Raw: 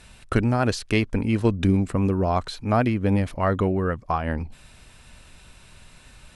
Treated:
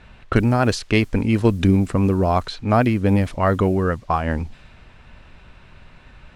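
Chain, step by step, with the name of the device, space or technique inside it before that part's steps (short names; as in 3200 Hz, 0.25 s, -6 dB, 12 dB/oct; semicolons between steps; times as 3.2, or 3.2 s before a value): cassette deck with a dynamic noise filter (white noise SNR 34 dB; low-pass opened by the level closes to 2200 Hz, open at -17 dBFS); gain +4 dB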